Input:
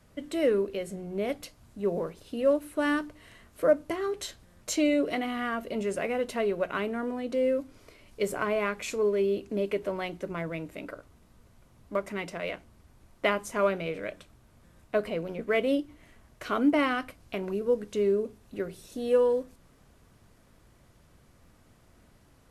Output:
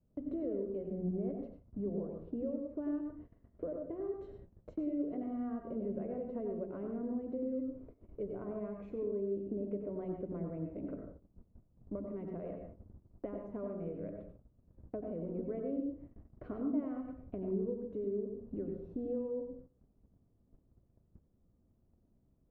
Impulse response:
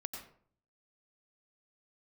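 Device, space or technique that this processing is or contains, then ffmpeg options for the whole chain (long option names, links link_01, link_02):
television next door: -filter_complex "[0:a]acompressor=threshold=-39dB:ratio=4,lowpass=420[link_01];[1:a]atrim=start_sample=2205[link_02];[link_01][link_02]afir=irnorm=-1:irlink=0,agate=range=-16dB:threshold=-56dB:ratio=16:detection=peak,volume=6dB"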